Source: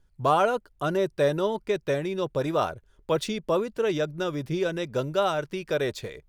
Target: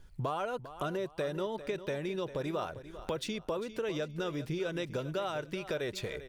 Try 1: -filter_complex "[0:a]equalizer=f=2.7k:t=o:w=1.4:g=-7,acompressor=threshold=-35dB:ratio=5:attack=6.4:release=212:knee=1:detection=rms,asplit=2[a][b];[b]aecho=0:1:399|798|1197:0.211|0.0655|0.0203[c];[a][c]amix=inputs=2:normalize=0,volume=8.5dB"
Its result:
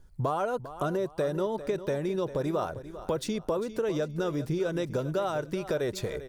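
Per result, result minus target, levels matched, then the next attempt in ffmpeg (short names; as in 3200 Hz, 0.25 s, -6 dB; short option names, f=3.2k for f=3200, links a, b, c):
compressor: peak gain reduction -6.5 dB; 2000 Hz band -4.5 dB
-filter_complex "[0:a]equalizer=f=2.7k:t=o:w=1.4:g=-7,acompressor=threshold=-42dB:ratio=5:attack=6.4:release=212:knee=1:detection=rms,asplit=2[a][b];[b]aecho=0:1:399|798|1197:0.211|0.0655|0.0203[c];[a][c]amix=inputs=2:normalize=0,volume=8.5dB"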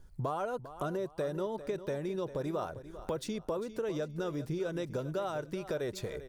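2000 Hz band -4.5 dB
-filter_complex "[0:a]equalizer=f=2.7k:t=o:w=1.4:g=2.5,acompressor=threshold=-42dB:ratio=5:attack=6.4:release=212:knee=1:detection=rms,asplit=2[a][b];[b]aecho=0:1:399|798|1197:0.211|0.0655|0.0203[c];[a][c]amix=inputs=2:normalize=0,volume=8.5dB"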